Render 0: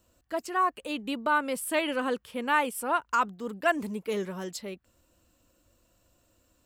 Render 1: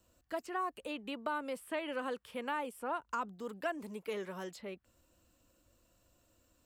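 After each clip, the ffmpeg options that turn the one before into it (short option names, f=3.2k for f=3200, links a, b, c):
-filter_complex "[0:a]acrossover=split=400|910|3100[a][b][c][d];[a]acompressor=threshold=-44dB:ratio=4[e];[b]acompressor=threshold=-35dB:ratio=4[f];[c]acompressor=threshold=-39dB:ratio=4[g];[d]acompressor=threshold=-54dB:ratio=4[h];[e][f][g][h]amix=inputs=4:normalize=0,volume=-3.5dB"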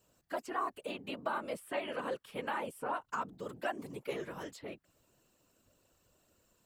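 -af "afftfilt=real='hypot(re,im)*cos(2*PI*random(0))':imag='hypot(re,im)*sin(2*PI*random(1))':win_size=512:overlap=0.75,lowshelf=f=150:g=-5.5,volume=6.5dB"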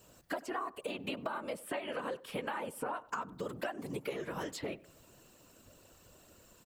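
-filter_complex "[0:a]acompressor=threshold=-46dB:ratio=10,asplit=2[a][b];[b]adelay=96,lowpass=f=1.5k:p=1,volume=-19dB,asplit=2[c][d];[d]adelay=96,lowpass=f=1.5k:p=1,volume=0.44,asplit=2[e][f];[f]adelay=96,lowpass=f=1.5k:p=1,volume=0.44[g];[a][c][e][g]amix=inputs=4:normalize=0,volume=11dB"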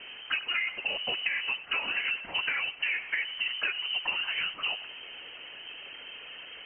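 -af "aeval=exprs='val(0)+0.5*0.00631*sgn(val(0))':c=same,lowpass=f=2.7k:t=q:w=0.5098,lowpass=f=2.7k:t=q:w=0.6013,lowpass=f=2.7k:t=q:w=0.9,lowpass=f=2.7k:t=q:w=2.563,afreqshift=-3200,volume=6dB"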